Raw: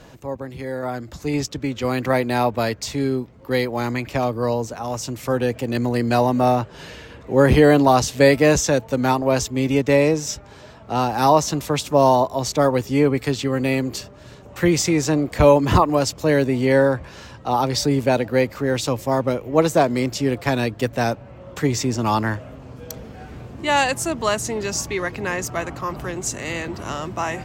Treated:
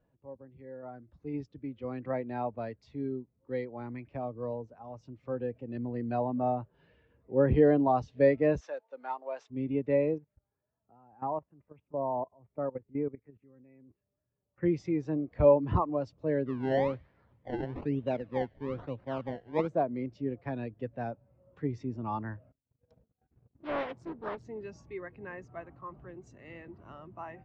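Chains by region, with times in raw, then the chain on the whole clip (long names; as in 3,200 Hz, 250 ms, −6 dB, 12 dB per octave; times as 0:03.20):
0:08.61–0:09.50: variable-slope delta modulation 64 kbit/s + high-pass filter 610 Hz + high-shelf EQ 7,200 Hz +5.5 dB
0:10.18–0:14.63: Butterworth low-pass 2,500 Hz + output level in coarse steps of 18 dB
0:16.46–0:19.68: sample-and-hold swept by an LFO 25× 1.1 Hz + delay with a high-pass on its return 95 ms, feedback 67%, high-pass 1,600 Hz, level −19 dB
0:22.52–0:24.45: noise gate −36 dBFS, range −23 dB + highs frequency-modulated by the lows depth 0.79 ms
whole clip: low-pass filter 3,300 Hz 12 dB per octave; every bin expanded away from the loudest bin 1.5 to 1; level −8.5 dB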